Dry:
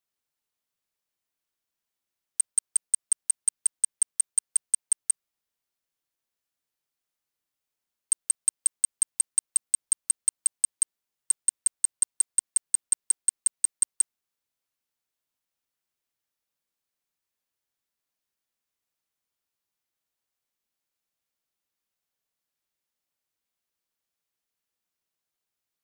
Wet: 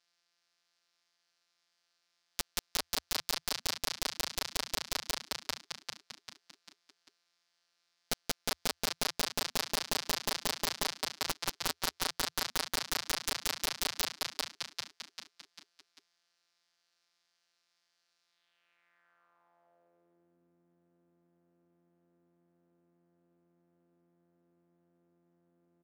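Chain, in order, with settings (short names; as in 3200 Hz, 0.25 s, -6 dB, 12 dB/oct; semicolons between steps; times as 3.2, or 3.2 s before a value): sample sorter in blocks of 256 samples; on a send: frequency-shifting echo 0.395 s, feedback 43%, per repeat -87 Hz, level -10 dB; on the sum: band-pass sweep 4800 Hz -> 270 Hz, 18.24–20.39; bell 1100 Hz +5.5 dB 2.3 oct; sine folder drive 16 dB, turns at -17.5 dBFS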